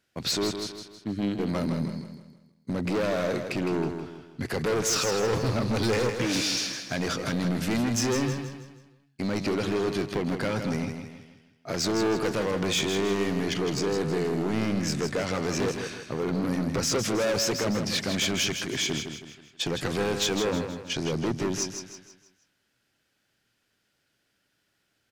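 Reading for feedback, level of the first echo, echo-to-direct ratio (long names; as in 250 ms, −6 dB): 41%, −7.5 dB, −6.5 dB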